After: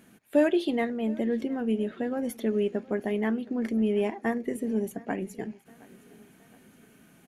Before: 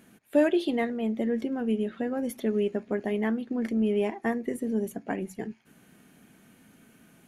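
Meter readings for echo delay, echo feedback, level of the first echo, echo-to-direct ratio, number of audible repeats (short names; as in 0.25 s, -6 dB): 0.718 s, 49%, -22.5 dB, -21.5 dB, 3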